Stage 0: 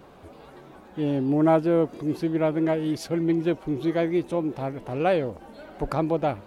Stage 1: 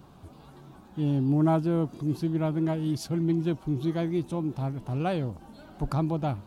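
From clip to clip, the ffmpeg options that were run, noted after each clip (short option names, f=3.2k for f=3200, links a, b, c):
-af "equalizer=f=125:t=o:w=1:g=6,equalizer=f=500:t=o:w=1:g=-11,equalizer=f=2k:t=o:w=1:g=-10"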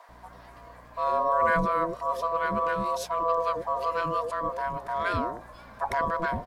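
-filter_complex "[0:a]aeval=exprs='val(0)*sin(2*PI*830*n/s)':c=same,aeval=exprs='val(0)+0.00141*(sin(2*PI*60*n/s)+sin(2*PI*2*60*n/s)/2+sin(2*PI*3*60*n/s)/3+sin(2*PI*4*60*n/s)/4+sin(2*PI*5*60*n/s)/5)':c=same,acrossover=split=540[a][b];[a]adelay=90[c];[c][b]amix=inputs=2:normalize=0,volume=4dB"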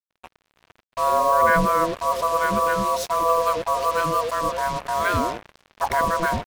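-af "acrusher=bits=5:mix=0:aa=0.5,volume=6dB"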